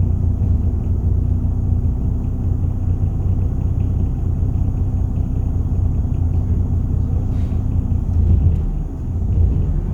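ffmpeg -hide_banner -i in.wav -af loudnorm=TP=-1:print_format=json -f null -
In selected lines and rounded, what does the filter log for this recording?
"input_i" : "-19.7",
"input_tp" : "-3.9",
"input_lra" : "0.8",
"input_thresh" : "-29.7",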